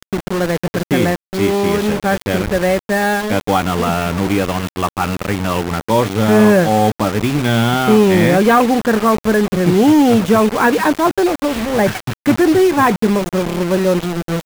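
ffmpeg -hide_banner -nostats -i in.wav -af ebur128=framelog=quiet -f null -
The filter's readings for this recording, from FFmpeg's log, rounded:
Integrated loudness:
  I:         -14.9 LUFS
  Threshold: -24.9 LUFS
Loudness range:
  LRA:         4.7 LU
  Threshold: -34.7 LUFS
  LRA low:   -17.4 LUFS
  LRA high:  -12.7 LUFS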